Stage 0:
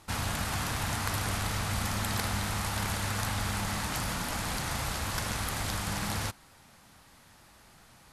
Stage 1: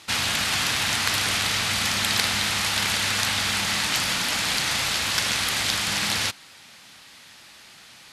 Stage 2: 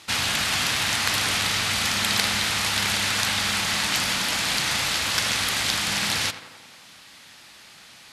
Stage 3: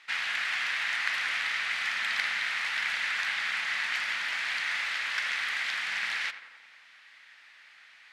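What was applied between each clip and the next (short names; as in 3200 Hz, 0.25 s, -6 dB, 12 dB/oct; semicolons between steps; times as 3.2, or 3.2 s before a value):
weighting filter D; gain +4 dB
tape echo 87 ms, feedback 70%, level -11 dB, low-pass 2200 Hz
band-pass 1900 Hz, Q 2.6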